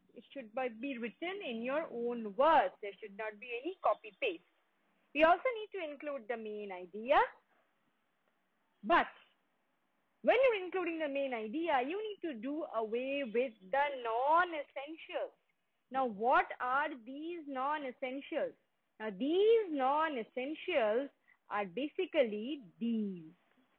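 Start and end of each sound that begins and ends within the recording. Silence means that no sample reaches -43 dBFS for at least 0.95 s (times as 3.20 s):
8.84–9.09 s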